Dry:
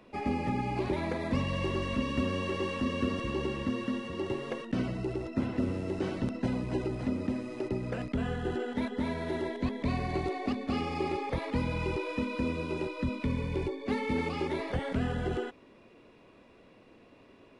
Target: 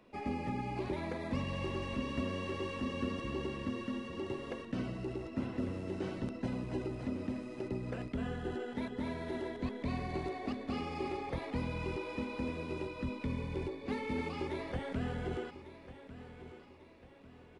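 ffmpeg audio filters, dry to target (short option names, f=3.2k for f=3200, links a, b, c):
-af "aecho=1:1:1147|2294|3441|4588:0.2|0.0878|0.0386|0.017,volume=-6dB"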